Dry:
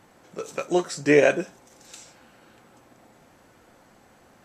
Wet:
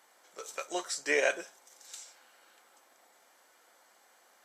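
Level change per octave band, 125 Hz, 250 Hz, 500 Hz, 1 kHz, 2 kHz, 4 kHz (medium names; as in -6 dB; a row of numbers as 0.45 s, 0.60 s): under -30 dB, -19.0 dB, -12.5 dB, -8.0 dB, -5.0 dB, -3.0 dB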